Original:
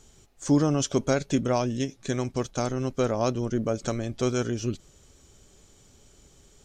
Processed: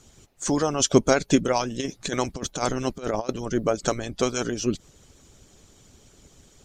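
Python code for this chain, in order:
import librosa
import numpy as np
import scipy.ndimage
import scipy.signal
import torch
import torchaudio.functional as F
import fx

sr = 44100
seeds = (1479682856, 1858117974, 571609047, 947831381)

y = fx.hpss(x, sr, part='harmonic', gain_db=-16)
y = fx.over_compress(y, sr, threshold_db=-34.0, ratio=-0.5, at=(1.79, 3.29))
y = F.gain(torch.from_numpy(y), 8.0).numpy()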